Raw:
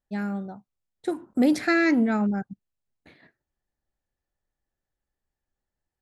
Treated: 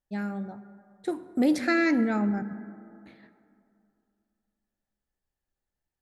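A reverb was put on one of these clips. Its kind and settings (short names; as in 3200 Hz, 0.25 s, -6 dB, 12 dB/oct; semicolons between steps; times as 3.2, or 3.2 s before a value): plate-style reverb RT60 2.6 s, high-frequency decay 0.35×, DRR 12.5 dB; gain -2.5 dB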